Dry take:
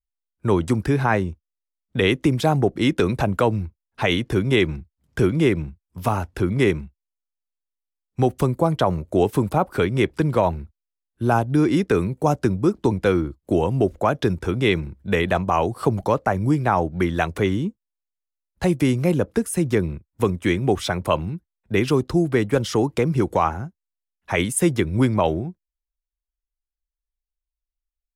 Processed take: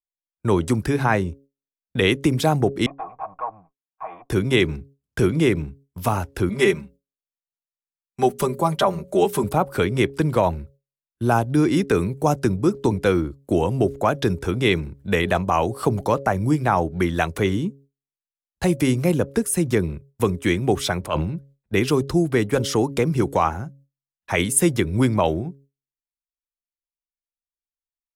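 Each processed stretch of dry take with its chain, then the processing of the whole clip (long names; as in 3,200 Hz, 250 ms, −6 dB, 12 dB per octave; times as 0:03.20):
0:02.86–0:04.30: lower of the sound and its delayed copy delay 6.3 ms + formant resonators in series a + parametric band 1,700 Hz +12.5 dB 1.5 octaves
0:06.49–0:09.44: low-shelf EQ 250 Hz −9 dB + mains-hum notches 60/120/180/240 Hz + comb filter 5.1 ms, depth 88%
0:21.01–0:21.73: high-shelf EQ 6,100 Hz −8.5 dB + transient designer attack −10 dB, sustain +7 dB
whole clip: hum removal 138.1 Hz, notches 4; noise gate with hold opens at −41 dBFS; high-shelf EQ 5,500 Hz +6.5 dB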